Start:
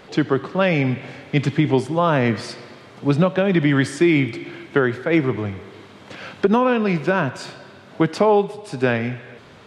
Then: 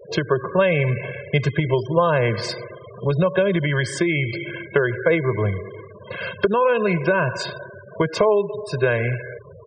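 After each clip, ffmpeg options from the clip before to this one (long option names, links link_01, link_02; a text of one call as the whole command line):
ffmpeg -i in.wav -af "acompressor=threshold=-20dB:ratio=6,aecho=1:1:1.9:1,afftfilt=real='re*gte(hypot(re,im),0.0251)':imag='im*gte(hypot(re,im),0.0251)':win_size=1024:overlap=0.75,volume=3dB" out.wav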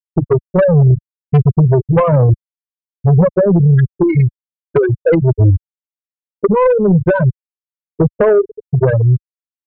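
ffmpeg -i in.wav -af "afftfilt=real='re*gte(hypot(re,im),0.562)':imag='im*gte(hypot(re,im),0.562)':win_size=1024:overlap=0.75,aemphasis=mode=reproduction:type=riaa,aeval=exprs='0.841*(cos(1*acos(clip(val(0)/0.841,-1,1)))-cos(1*PI/2))+0.188*(cos(5*acos(clip(val(0)/0.841,-1,1)))-cos(5*PI/2))':channel_layout=same" out.wav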